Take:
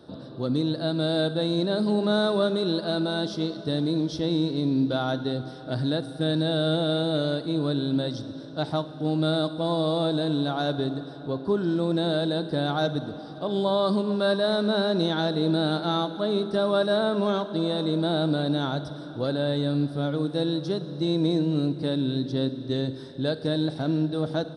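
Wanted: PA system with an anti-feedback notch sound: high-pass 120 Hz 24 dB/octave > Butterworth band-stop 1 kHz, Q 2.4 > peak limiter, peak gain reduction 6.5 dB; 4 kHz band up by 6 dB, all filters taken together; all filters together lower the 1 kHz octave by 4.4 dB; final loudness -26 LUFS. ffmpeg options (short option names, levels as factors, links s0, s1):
-af "highpass=f=120:w=0.5412,highpass=f=120:w=1.3066,asuperstop=centerf=1000:order=8:qfactor=2.4,equalizer=f=1000:t=o:g=-3.5,equalizer=f=4000:t=o:g=6.5,volume=1.19,alimiter=limit=0.158:level=0:latency=1"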